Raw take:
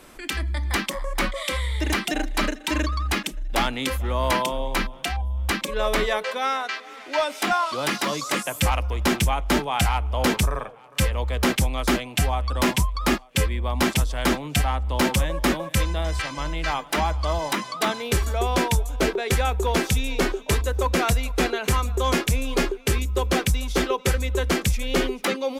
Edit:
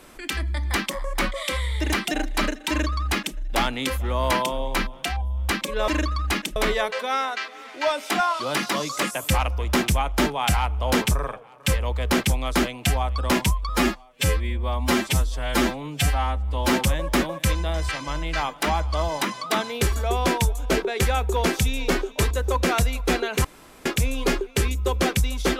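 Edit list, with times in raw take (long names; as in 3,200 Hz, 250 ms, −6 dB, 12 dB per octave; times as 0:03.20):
0:02.69–0:03.37: duplicate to 0:05.88
0:13.01–0:15.04: time-stretch 1.5×
0:21.75–0:22.16: fill with room tone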